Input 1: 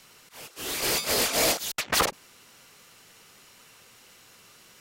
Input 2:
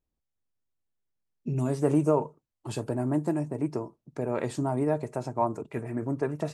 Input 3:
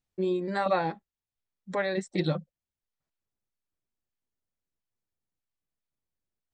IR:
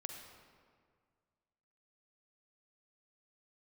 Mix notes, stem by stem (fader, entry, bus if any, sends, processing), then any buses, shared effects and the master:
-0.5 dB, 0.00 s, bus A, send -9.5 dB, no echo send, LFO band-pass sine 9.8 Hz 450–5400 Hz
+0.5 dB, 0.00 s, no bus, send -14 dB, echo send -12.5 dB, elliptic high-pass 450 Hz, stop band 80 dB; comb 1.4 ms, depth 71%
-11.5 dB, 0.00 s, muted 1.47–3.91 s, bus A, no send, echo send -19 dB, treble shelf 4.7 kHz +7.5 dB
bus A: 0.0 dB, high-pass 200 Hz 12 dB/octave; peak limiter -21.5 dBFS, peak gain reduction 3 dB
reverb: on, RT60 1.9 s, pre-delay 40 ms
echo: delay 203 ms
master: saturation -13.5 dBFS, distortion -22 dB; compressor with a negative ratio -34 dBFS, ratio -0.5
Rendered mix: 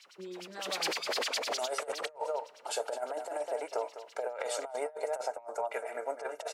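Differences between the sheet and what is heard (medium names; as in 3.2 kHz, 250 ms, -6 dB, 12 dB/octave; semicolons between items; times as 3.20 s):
stem 3 -11.5 dB -> -19.0 dB; reverb return -8.0 dB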